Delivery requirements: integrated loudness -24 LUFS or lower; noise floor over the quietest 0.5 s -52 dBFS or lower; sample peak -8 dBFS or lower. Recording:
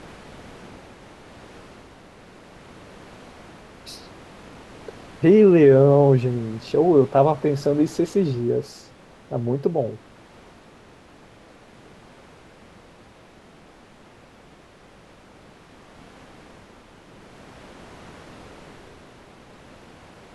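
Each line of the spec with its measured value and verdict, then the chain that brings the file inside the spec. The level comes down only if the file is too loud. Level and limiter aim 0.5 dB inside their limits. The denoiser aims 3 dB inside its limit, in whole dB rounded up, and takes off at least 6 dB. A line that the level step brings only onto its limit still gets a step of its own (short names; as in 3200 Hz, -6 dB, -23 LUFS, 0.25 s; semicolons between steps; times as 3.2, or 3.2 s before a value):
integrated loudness -18.5 LUFS: fail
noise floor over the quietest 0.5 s -50 dBFS: fail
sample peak -5.0 dBFS: fail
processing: gain -6 dB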